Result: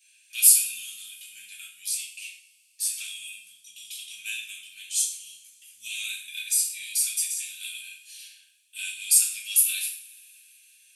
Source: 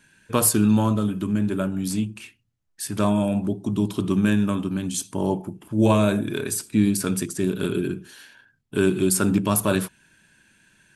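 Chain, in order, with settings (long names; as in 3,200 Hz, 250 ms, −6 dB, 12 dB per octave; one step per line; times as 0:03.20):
elliptic high-pass filter 2,400 Hz, stop band 60 dB
high-shelf EQ 10,000 Hz +7 dB
coupled-rooms reverb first 0.49 s, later 3.5 s, from −28 dB, DRR −6.5 dB
level −4.5 dB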